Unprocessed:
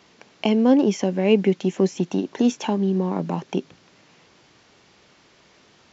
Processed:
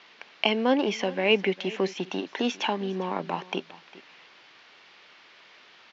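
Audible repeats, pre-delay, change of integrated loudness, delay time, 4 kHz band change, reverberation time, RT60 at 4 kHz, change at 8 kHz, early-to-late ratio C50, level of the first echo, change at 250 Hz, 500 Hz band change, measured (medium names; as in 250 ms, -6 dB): 1, no reverb, -5.5 dB, 403 ms, +5.0 dB, no reverb, no reverb, no reading, no reverb, -19.0 dB, -10.0 dB, -5.0 dB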